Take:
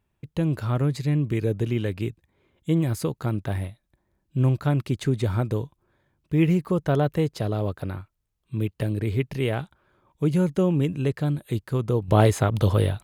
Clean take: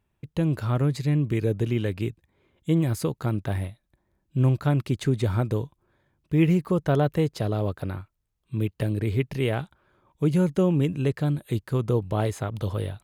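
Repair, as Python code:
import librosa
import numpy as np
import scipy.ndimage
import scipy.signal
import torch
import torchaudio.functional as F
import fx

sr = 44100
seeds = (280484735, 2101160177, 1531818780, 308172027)

y = fx.gain(x, sr, db=fx.steps((0.0, 0.0), (12.08, -8.0)))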